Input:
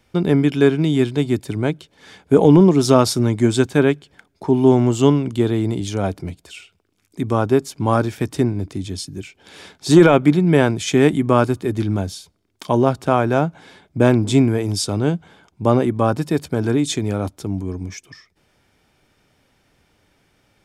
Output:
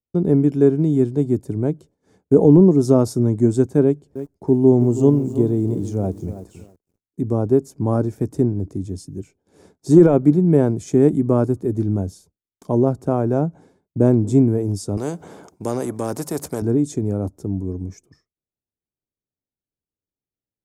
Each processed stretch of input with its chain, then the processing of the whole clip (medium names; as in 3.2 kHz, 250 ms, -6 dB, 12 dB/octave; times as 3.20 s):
3.83–7.46 s: dynamic bell 1.5 kHz, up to -5 dB, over -38 dBFS, Q 1.4 + bit-crushed delay 323 ms, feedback 35%, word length 6-bit, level -12 dB
14.97–16.62 s: high-pass 580 Hz 6 dB/octave + spectrum-flattening compressor 2:1
whole clip: expander -37 dBFS; FFT filter 440 Hz 0 dB, 3.2 kHz -25 dB, 6.6 kHz -9 dB